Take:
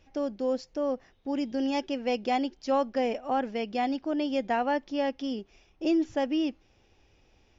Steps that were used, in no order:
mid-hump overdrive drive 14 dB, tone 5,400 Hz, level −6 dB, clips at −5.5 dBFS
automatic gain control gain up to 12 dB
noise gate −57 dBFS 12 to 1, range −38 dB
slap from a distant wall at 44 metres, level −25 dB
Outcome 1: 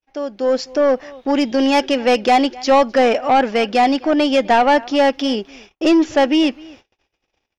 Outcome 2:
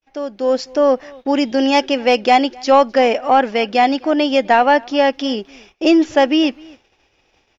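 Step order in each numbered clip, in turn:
slap from a distant wall, then noise gate, then automatic gain control, then mid-hump overdrive
mid-hump overdrive, then noise gate, then slap from a distant wall, then automatic gain control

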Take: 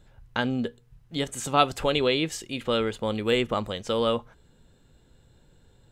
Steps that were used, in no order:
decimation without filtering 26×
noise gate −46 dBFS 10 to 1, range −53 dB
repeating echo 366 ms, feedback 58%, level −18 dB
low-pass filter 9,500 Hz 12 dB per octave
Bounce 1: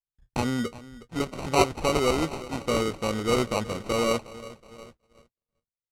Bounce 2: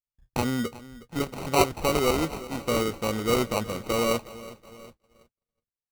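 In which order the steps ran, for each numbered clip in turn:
repeating echo, then noise gate, then decimation without filtering, then low-pass filter
low-pass filter, then decimation without filtering, then repeating echo, then noise gate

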